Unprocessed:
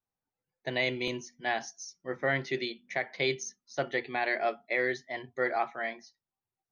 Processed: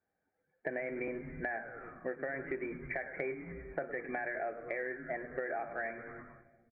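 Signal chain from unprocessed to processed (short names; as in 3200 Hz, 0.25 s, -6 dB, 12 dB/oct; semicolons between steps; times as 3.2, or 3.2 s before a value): thirty-one-band EQ 125 Hz -12 dB, 1000 Hz -9 dB, 1600 Hz +8 dB; modulation noise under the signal 13 dB; rippled Chebyshev low-pass 2400 Hz, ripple 6 dB; limiter -25 dBFS, peak gain reduction 8 dB; HPF 62 Hz; tilt shelf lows +3.5 dB, about 1300 Hz; frequency-shifting echo 0.102 s, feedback 51%, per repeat -110 Hz, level -15 dB; on a send at -17 dB: reverb RT60 1.4 s, pre-delay 6 ms; on the sum: compressor 6:1, threshold -47 dBFS, peak gain reduction 17.5 dB; gain +11 dB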